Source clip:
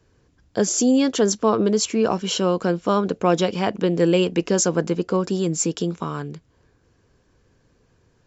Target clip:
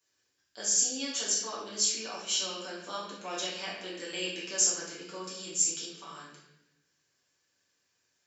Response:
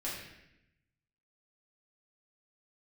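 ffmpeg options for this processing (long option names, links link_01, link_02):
-filter_complex "[0:a]aderivative[link_01];[1:a]atrim=start_sample=2205[link_02];[link_01][link_02]afir=irnorm=-1:irlink=0"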